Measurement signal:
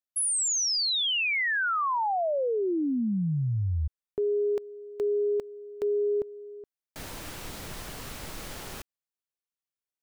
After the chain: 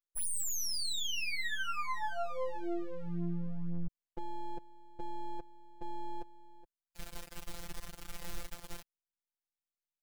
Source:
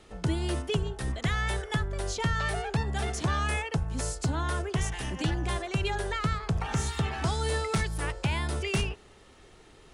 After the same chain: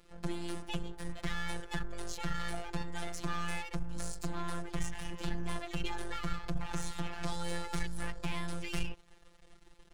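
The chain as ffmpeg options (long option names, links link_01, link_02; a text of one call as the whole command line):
ffmpeg -i in.wav -af "asubboost=boost=2.5:cutoff=95,aeval=exprs='max(val(0),0)':channel_layout=same,afftfilt=real='hypot(re,im)*cos(PI*b)':imag='0':win_size=1024:overlap=0.75,volume=-1.5dB" out.wav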